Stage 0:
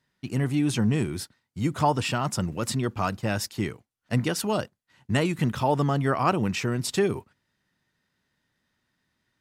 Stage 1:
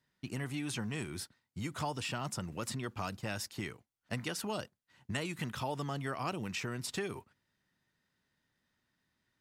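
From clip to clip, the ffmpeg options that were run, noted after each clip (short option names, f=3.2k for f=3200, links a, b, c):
-filter_complex "[0:a]acrossover=split=760|2400[a][b][c];[a]acompressor=threshold=-33dB:ratio=4[d];[b]acompressor=threshold=-37dB:ratio=4[e];[c]acompressor=threshold=-34dB:ratio=4[f];[d][e][f]amix=inputs=3:normalize=0,volume=-5dB"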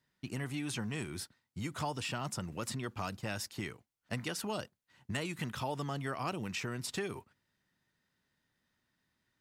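-af "asoftclip=type=hard:threshold=-24dB"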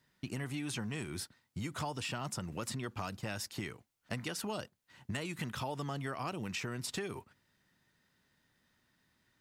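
-af "acompressor=threshold=-47dB:ratio=2,volume=6dB"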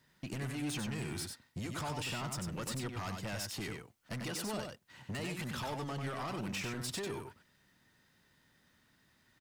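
-filter_complex "[0:a]asoftclip=type=tanh:threshold=-39dB,asplit=2[a][b];[b]aecho=0:1:95:0.562[c];[a][c]amix=inputs=2:normalize=0,volume=3.5dB"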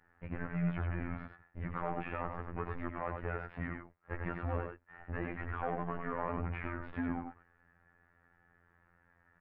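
-af "highpass=f=170:t=q:w=0.5412,highpass=f=170:t=q:w=1.307,lowpass=f=2.1k:t=q:w=0.5176,lowpass=f=2.1k:t=q:w=0.7071,lowpass=f=2.1k:t=q:w=1.932,afreqshift=-130,afftfilt=real='hypot(re,im)*cos(PI*b)':imag='0':win_size=2048:overlap=0.75,volume=7dB"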